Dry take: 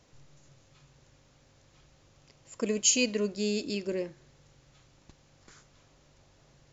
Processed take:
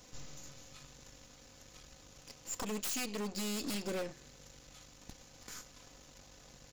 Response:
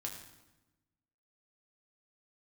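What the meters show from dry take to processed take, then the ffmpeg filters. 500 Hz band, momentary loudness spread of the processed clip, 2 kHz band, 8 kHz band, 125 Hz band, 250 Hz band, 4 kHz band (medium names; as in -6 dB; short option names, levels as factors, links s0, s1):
-10.0 dB, 20 LU, -7.5 dB, no reading, -5.0 dB, -7.5 dB, -8.5 dB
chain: -af "aecho=1:1:4:0.45,acompressor=threshold=0.0178:ratio=6,highshelf=f=5400:g=12,aeval=exprs='0.0188*(abs(mod(val(0)/0.0188+3,4)-2)-1)':c=same,aeval=exprs='0.0188*(cos(1*acos(clip(val(0)/0.0188,-1,1)))-cos(1*PI/2))+0.00237*(cos(8*acos(clip(val(0)/0.0188,-1,1)))-cos(8*PI/2))':c=same,volume=1.33"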